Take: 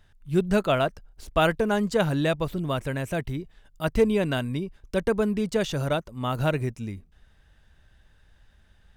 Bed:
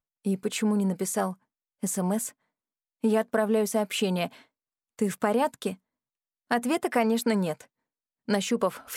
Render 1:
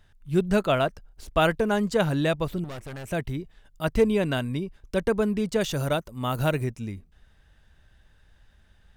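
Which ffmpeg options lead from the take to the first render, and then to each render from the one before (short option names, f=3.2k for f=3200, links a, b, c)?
-filter_complex "[0:a]asettb=1/sr,asplit=3[a][b][c];[a]atrim=end=2.644[d];[b]atrim=start=2.64:end=3.08,asetpts=PTS-STARTPTS,afade=t=in:d=0.004:c=qsin,afade=t=out:st=0.436:d=0.004:c=qsin,aeval=exprs='(tanh(56.2*val(0)+0.55)-tanh(0.55))/56.2':c=same[e];[c]atrim=start=3.076[f];[d][e]acrossfade=d=0.004:c1=hsin:c2=qsin[g];[g][f]acrossfade=d=0.004:c1=qsin:c2=hsin,asettb=1/sr,asplit=3[h][i][j];[h]atrim=end=5.614[k];[i]atrim=start=5.61:end=6.64,asetpts=PTS-STARTPTS,afade=t=in:d=0.004:c=qsin,afade=t=out:st=1.026:d=0.004:c=qsin,highshelf=f=9.5k:g=11[l];[j]atrim=start=6.636[m];[k][l]acrossfade=d=0.004:c1=hsin:c2=qsin[n];[n][m]acrossfade=d=0.004:c1=qsin:c2=hsin"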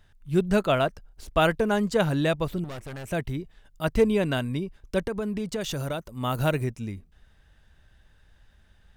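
-filter_complex "[0:a]asettb=1/sr,asplit=3[a][b][c];[a]atrim=end=5.064[d];[b]atrim=start=5.06:end=6.11,asetpts=PTS-STARTPTS,afade=t=in:d=0.004:c=qsin,afade=t=out:st=1.046:d=0.004:c=qsin,acompressor=threshold=-26dB:ratio=4:attack=3.2:release=140:knee=1:detection=peak[e];[c]atrim=start=6.106[f];[d][e]acrossfade=d=0.004:c1=hsin:c2=qsin[g];[g][f]acrossfade=d=0.004:c1=qsin:c2=hsin"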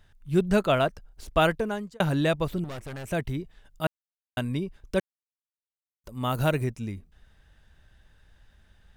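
-filter_complex "[0:a]asplit=6[a][b][c][d][e][f];[a]atrim=end=2,asetpts=PTS-STARTPTS,afade=t=out:st=1.41:d=0.59[g];[b]atrim=start=2:end=3.87,asetpts=PTS-STARTPTS,afade=t=in:d=0.004:c=hsin,afade=t=out:st=1.866:d=0.004:c=hsin[h];[c]atrim=start=3.87:end=4.37,asetpts=PTS-STARTPTS,volume=0[i];[d]atrim=start=4.37:end=5,asetpts=PTS-STARTPTS,afade=t=in:d=0.004:c=hsin,afade=t=out:st=0.626:d=0.004:c=hsin[j];[e]atrim=start=5:end=6.04,asetpts=PTS-STARTPTS,volume=0[k];[f]atrim=start=6.04,asetpts=PTS-STARTPTS,afade=t=in:d=0.004:c=hsin[l];[g][h][i][j][k][l]concat=n=6:v=0:a=1"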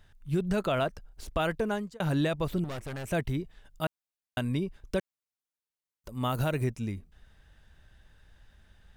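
-af "alimiter=limit=-18.5dB:level=0:latency=1:release=84"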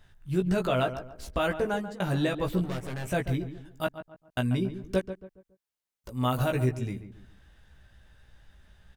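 -filter_complex "[0:a]asplit=2[a][b];[b]adelay=16,volume=-4dB[c];[a][c]amix=inputs=2:normalize=0,asplit=2[d][e];[e]adelay=139,lowpass=f=1.6k:p=1,volume=-10.5dB,asplit=2[f][g];[g]adelay=139,lowpass=f=1.6k:p=1,volume=0.36,asplit=2[h][i];[i]adelay=139,lowpass=f=1.6k:p=1,volume=0.36,asplit=2[j][k];[k]adelay=139,lowpass=f=1.6k:p=1,volume=0.36[l];[f][h][j][l]amix=inputs=4:normalize=0[m];[d][m]amix=inputs=2:normalize=0"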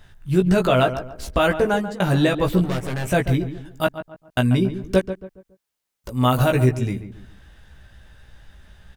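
-af "volume=9dB"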